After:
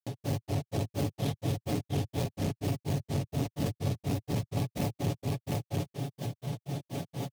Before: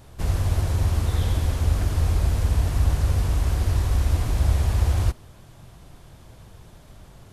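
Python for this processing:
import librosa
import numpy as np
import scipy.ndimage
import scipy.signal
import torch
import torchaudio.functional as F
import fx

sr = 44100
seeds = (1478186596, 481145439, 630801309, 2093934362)

y = fx.peak_eq(x, sr, hz=4600.0, db=-4.0, octaves=1.8)
y = np.repeat(scipy.signal.resample_poly(y, 1, 3), 3)[:len(y)]
y = fx.peak_eq(y, sr, hz=1400.0, db=-15.0, octaves=0.85)
y = fx.notch(y, sr, hz=1000.0, q=10.0)
y = fx.echo_feedback(y, sr, ms=65, feedback_pct=36, wet_db=-9)
y = fx.granulator(y, sr, seeds[0], grain_ms=142.0, per_s=4.2, spray_ms=100.0, spread_st=0)
y = y + 0.71 * np.pad(y, (int(7.1 * sr / 1000.0), 0))[:len(y)]
y = 10.0 ** (-23.0 / 20.0) * np.tanh(y / 10.0 ** (-23.0 / 20.0))
y = scipy.signal.sosfilt(scipy.signal.butter(4, 120.0, 'highpass', fs=sr, output='sos'), y)
y = y + 10.0 ** (-3.0 / 20.0) * np.pad(y, (int(702 * sr / 1000.0), 0))[:len(y)]
y = fx.env_flatten(y, sr, amount_pct=70)
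y = F.gain(torch.from_numpy(y), 2.5).numpy()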